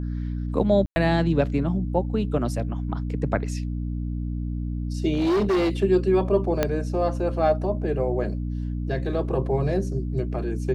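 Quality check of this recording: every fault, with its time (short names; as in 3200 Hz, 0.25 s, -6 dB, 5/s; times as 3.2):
hum 60 Hz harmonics 5 -28 dBFS
0.86–0.96 gap 0.1 s
5.13–5.7 clipped -18.5 dBFS
6.63 pop -7 dBFS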